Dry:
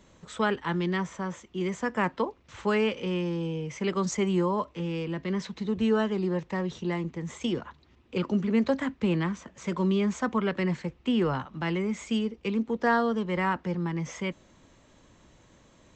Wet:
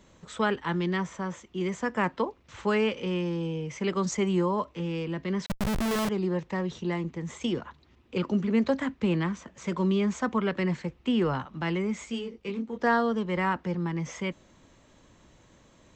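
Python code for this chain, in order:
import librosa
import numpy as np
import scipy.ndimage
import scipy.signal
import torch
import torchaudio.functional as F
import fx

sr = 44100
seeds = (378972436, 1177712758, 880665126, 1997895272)

y = fx.schmitt(x, sr, flips_db=-33.0, at=(5.46, 6.09))
y = fx.detune_double(y, sr, cents=23, at=(12.05, 12.77), fade=0.02)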